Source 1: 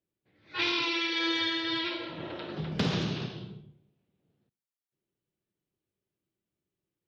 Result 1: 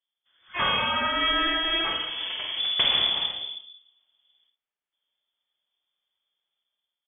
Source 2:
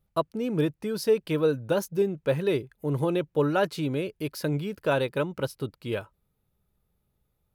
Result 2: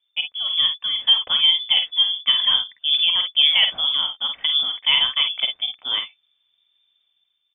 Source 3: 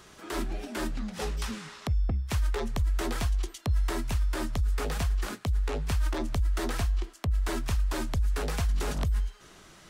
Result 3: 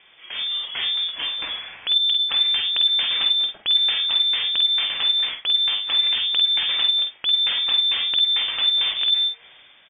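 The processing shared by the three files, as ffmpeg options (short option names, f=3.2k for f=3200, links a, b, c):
-filter_complex "[0:a]dynaudnorm=f=140:g=7:m=6dB,asplit=2[a][b];[b]aecho=0:1:49|62:0.447|0.178[c];[a][c]amix=inputs=2:normalize=0,lowpass=f=3.1k:t=q:w=0.5098,lowpass=f=3.1k:t=q:w=0.6013,lowpass=f=3.1k:t=q:w=0.9,lowpass=f=3.1k:t=q:w=2.563,afreqshift=-3600"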